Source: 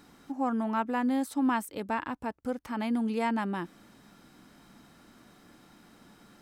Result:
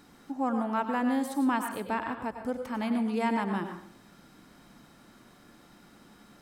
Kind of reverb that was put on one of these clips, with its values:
dense smooth reverb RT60 0.54 s, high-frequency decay 0.6×, pre-delay 85 ms, DRR 5.5 dB

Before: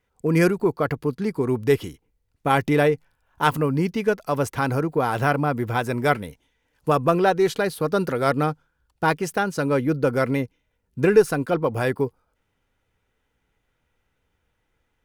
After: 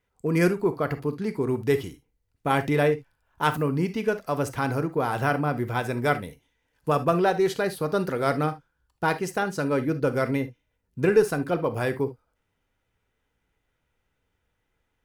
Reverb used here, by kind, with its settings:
reverb whose tail is shaped and stops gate 90 ms flat, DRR 10 dB
level −3.5 dB

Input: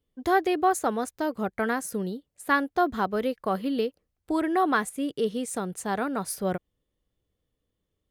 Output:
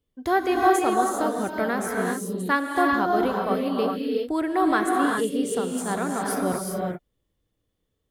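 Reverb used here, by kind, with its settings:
reverb whose tail is shaped and stops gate 420 ms rising, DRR −0.5 dB

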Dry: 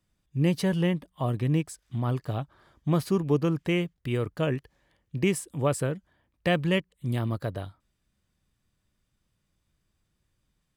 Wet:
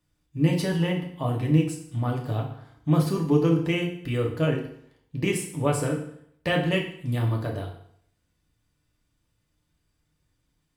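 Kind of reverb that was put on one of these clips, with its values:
feedback delay network reverb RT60 0.66 s, low-frequency decay 1×, high-frequency decay 0.9×, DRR −0.5 dB
level −1 dB

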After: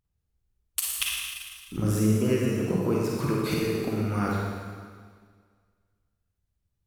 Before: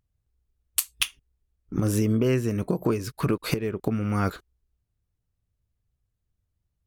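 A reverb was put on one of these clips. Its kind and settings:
four-comb reverb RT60 1.8 s, DRR −3.5 dB
level −5 dB

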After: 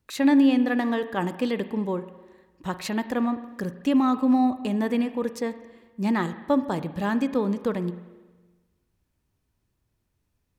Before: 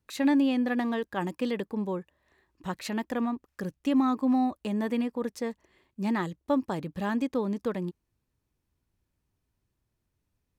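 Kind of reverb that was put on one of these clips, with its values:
spring reverb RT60 1.3 s, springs 40/51 ms, chirp 45 ms, DRR 12 dB
level +4 dB

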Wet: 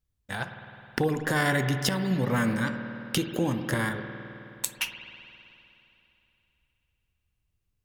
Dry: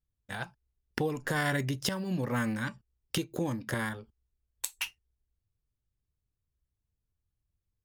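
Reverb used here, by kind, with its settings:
spring reverb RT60 3 s, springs 52 ms, chirp 60 ms, DRR 7 dB
level +4.5 dB

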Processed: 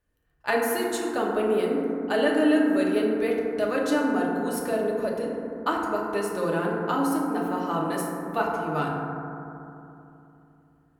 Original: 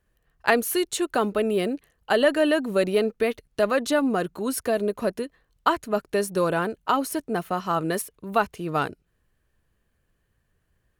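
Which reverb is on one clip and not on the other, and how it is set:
feedback delay network reverb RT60 2.9 s, low-frequency decay 1.3×, high-frequency decay 0.25×, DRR −3 dB
level −7 dB

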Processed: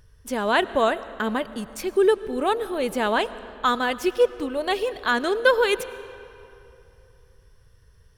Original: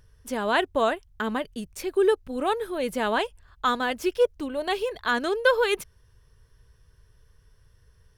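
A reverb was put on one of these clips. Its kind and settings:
comb and all-pass reverb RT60 2.9 s, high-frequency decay 0.7×, pre-delay 65 ms, DRR 15.5 dB
level +2.5 dB

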